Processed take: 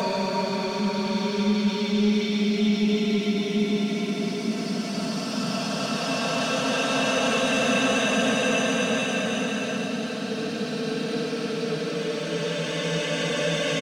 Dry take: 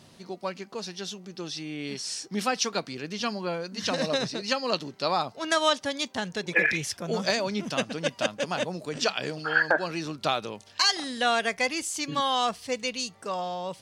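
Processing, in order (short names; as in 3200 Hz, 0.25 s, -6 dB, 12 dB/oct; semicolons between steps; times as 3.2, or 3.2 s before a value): Paulstretch 23×, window 0.25 s, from 7.45; sample leveller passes 1; comb 4.5 ms, depth 58%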